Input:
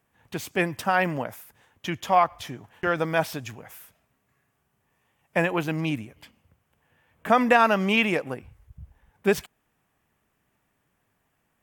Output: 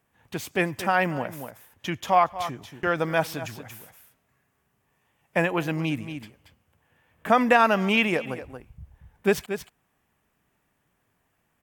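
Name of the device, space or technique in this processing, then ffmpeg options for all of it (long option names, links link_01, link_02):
ducked delay: -filter_complex "[0:a]asplit=3[link_01][link_02][link_03];[link_02]adelay=231,volume=-8dB[link_04];[link_03]apad=whole_len=523039[link_05];[link_04][link_05]sidechaincompress=threshold=-34dB:ratio=8:attack=5.6:release=166[link_06];[link_01][link_06]amix=inputs=2:normalize=0"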